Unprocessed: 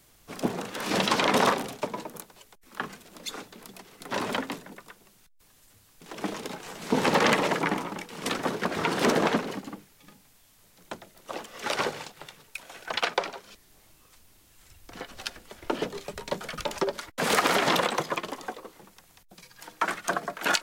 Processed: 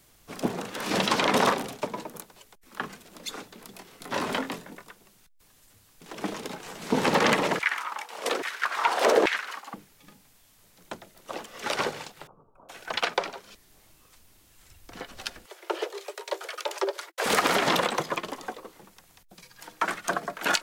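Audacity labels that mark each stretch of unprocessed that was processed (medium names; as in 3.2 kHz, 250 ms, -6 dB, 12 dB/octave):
3.700000	4.840000	doubling 23 ms -7 dB
7.590000	9.740000	LFO high-pass saw down 1.2 Hz 380–2200 Hz
12.270000	12.690000	elliptic low-pass 1.2 kHz
15.460000	17.260000	steep high-pass 340 Hz 96 dB/octave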